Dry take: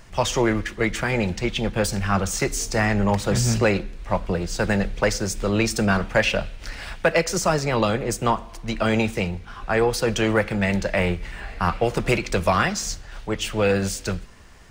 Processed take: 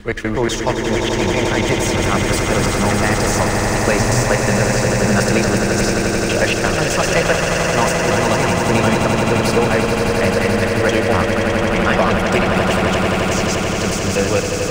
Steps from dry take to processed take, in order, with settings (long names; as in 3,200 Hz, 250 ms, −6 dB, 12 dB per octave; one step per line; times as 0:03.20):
slices reordered back to front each 121 ms, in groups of 7
echo that builds up and dies away 87 ms, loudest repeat 8, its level −7.5 dB
level +2 dB